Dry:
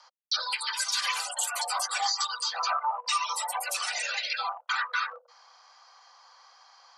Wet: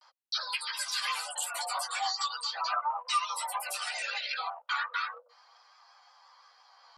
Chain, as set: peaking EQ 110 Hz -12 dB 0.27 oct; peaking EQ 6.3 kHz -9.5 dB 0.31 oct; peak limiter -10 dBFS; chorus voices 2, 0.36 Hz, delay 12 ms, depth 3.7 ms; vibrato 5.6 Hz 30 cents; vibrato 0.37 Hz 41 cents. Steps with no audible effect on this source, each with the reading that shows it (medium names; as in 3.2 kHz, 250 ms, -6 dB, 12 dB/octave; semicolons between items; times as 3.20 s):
peaking EQ 110 Hz: input has nothing below 480 Hz; peak limiter -10 dBFS: peak at its input -15.0 dBFS